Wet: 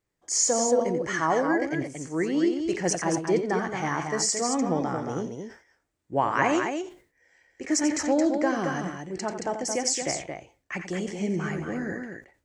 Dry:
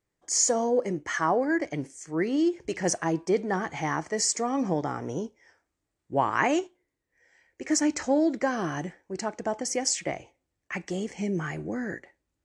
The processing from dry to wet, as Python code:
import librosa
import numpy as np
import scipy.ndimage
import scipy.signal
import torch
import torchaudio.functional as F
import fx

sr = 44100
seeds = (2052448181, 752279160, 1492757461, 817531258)

p1 = x + fx.echo_multitap(x, sr, ms=(88, 223), db=(-10.0, -6.0), dry=0)
y = fx.sustainer(p1, sr, db_per_s=150.0)